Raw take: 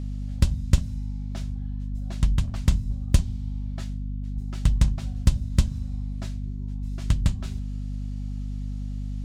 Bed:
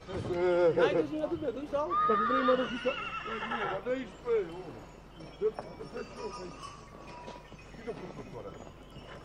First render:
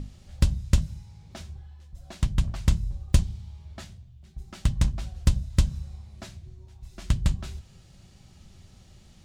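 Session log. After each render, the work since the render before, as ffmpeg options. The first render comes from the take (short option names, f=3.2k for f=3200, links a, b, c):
-af "bandreject=f=50:t=h:w=6,bandreject=f=100:t=h:w=6,bandreject=f=150:t=h:w=6,bandreject=f=200:t=h:w=6,bandreject=f=250:t=h:w=6"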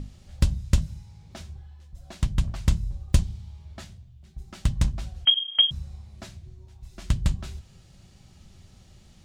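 -filter_complex "[0:a]asettb=1/sr,asplit=3[a][b][c];[a]atrim=end=5.254[d];[b]atrim=start=5.25:end=5.71,asetpts=PTS-STARTPTS,afade=t=in:d=0.004:c=qsin,afade=t=out:st=0.456:d=0.004:c=qsin,lowpass=f=2.8k:t=q:w=0.5098,lowpass=f=2.8k:t=q:w=0.6013,lowpass=f=2.8k:t=q:w=0.9,lowpass=f=2.8k:t=q:w=2.563,afreqshift=-3300[e];[c]atrim=start=5.706[f];[d][e]acrossfade=d=0.004:c1=hsin:c2=qsin[g];[g][f]acrossfade=d=0.004:c1=qsin:c2=hsin"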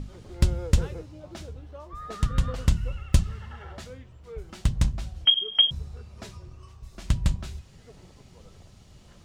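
-filter_complex "[1:a]volume=-12.5dB[a];[0:a][a]amix=inputs=2:normalize=0"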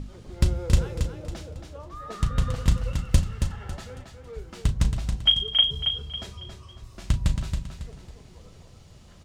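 -filter_complex "[0:a]asplit=2[a][b];[b]adelay=36,volume=-12dB[c];[a][c]amix=inputs=2:normalize=0,asplit=2[d][e];[e]aecho=0:1:275|550|825|1100:0.473|0.166|0.058|0.0203[f];[d][f]amix=inputs=2:normalize=0"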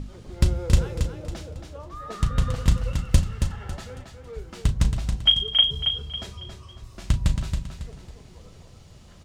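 -af "volume=1.5dB"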